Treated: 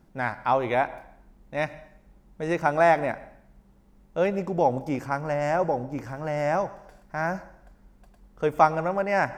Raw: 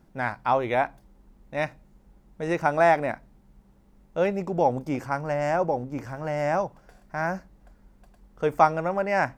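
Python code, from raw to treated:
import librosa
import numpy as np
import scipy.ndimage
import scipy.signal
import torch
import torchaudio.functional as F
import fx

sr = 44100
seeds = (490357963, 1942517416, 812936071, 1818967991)

y = fx.rev_plate(x, sr, seeds[0], rt60_s=0.69, hf_ratio=0.95, predelay_ms=90, drr_db=17.5)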